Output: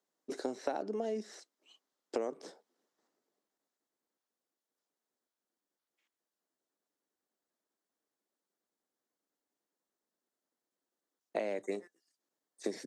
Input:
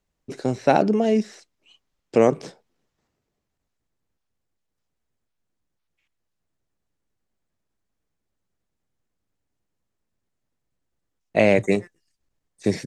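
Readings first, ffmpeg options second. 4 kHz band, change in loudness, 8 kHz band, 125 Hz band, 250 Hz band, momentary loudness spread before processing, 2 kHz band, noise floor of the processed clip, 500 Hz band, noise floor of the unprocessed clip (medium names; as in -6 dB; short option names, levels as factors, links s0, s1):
-14.0 dB, -18.0 dB, -10.5 dB, under -25 dB, -20.0 dB, 12 LU, -20.0 dB, under -85 dBFS, -16.5 dB, -79 dBFS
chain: -af "highpass=f=260:w=0.5412,highpass=f=260:w=1.3066,equalizer=f=2500:w=2.5:g=-8,acompressor=threshold=0.0355:ratio=8,volume=0.668"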